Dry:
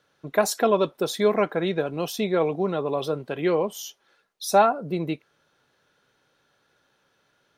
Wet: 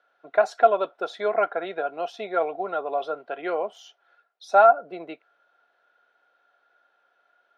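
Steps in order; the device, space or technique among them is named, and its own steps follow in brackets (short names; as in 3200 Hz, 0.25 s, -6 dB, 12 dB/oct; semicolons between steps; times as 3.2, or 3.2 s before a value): HPF 160 Hz; tin-can telephone (BPF 450–3100 Hz; small resonant body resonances 700/1400 Hz, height 14 dB, ringing for 35 ms); gain -4 dB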